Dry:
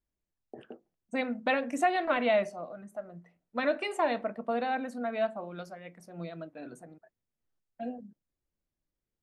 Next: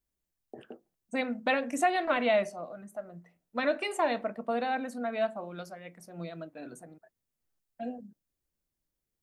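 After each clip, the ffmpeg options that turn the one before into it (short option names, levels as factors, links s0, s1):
-af "highshelf=f=6300:g=8"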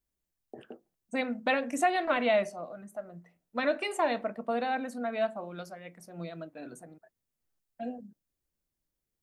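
-af anull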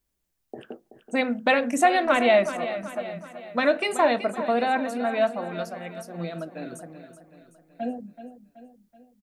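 -af "aecho=1:1:378|756|1134|1512|1890:0.251|0.126|0.0628|0.0314|0.0157,volume=2.24"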